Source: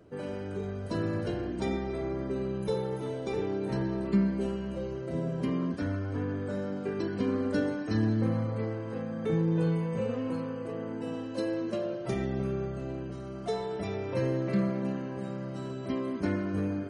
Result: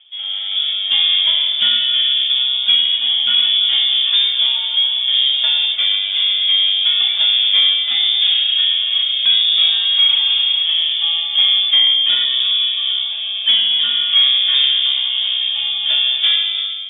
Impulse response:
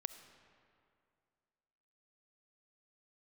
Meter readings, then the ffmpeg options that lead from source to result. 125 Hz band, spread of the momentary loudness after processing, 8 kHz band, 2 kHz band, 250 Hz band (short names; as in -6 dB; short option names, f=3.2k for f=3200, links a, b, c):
under -25 dB, 5 LU, n/a, +17.5 dB, under -20 dB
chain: -filter_complex "[0:a]highpass=260,equalizer=f=610:t=o:w=1.1:g=12,dynaudnorm=f=130:g=7:m=12dB,asoftclip=type=tanh:threshold=-9.5dB,asplit=2[a][b];[1:a]atrim=start_sample=2205,highshelf=f=3.5k:g=12[c];[b][c]afir=irnorm=-1:irlink=0,volume=-1dB[d];[a][d]amix=inputs=2:normalize=0,lowpass=f=3.2k:t=q:w=0.5098,lowpass=f=3.2k:t=q:w=0.6013,lowpass=f=3.2k:t=q:w=0.9,lowpass=f=3.2k:t=q:w=2.563,afreqshift=-3800,volume=-1.5dB"